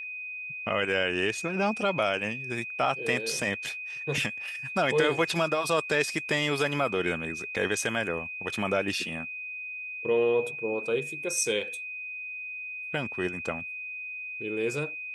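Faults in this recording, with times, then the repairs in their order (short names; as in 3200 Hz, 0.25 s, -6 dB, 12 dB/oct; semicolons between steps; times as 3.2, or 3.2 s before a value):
tone 2500 Hz -35 dBFS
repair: notch 2500 Hz, Q 30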